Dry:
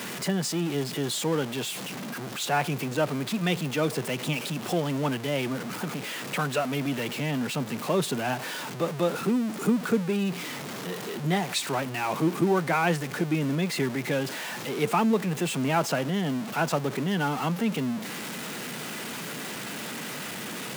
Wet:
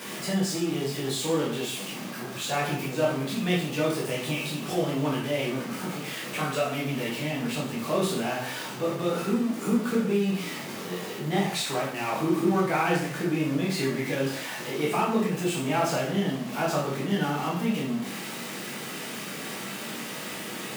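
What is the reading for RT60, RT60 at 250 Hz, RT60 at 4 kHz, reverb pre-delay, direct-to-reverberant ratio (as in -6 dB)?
0.60 s, 0.55 s, 0.55 s, 6 ms, -5.5 dB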